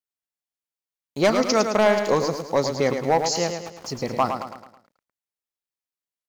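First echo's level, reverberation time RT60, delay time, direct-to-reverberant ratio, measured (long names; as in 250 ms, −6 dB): −7.0 dB, no reverb audible, 108 ms, no reverb audible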